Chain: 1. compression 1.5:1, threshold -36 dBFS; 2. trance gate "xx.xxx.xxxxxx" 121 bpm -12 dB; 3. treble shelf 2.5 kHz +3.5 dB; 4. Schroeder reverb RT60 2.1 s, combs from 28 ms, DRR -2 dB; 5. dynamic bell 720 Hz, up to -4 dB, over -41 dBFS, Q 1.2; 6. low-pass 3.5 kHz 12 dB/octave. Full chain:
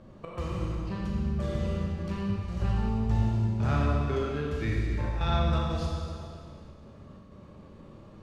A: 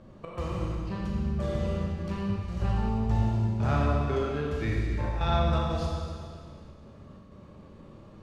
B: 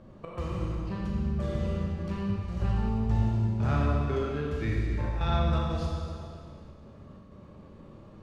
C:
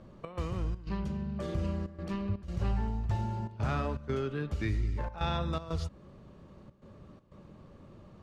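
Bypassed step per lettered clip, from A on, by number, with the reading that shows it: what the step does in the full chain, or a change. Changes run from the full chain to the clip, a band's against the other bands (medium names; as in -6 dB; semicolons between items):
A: 5, 1 kHz band +2.0 dB; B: 3, 4 kHz band -2.0 dB; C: 4, momentary loudness spread change +5 LU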